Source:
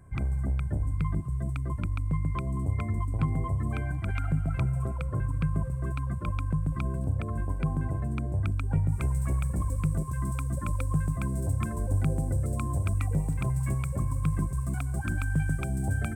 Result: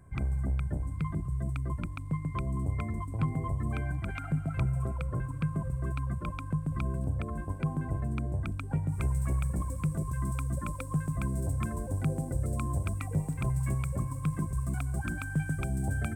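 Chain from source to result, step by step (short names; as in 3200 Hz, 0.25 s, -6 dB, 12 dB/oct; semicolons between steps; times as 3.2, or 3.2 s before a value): notches 50/100 Hz; gain -1.5 dB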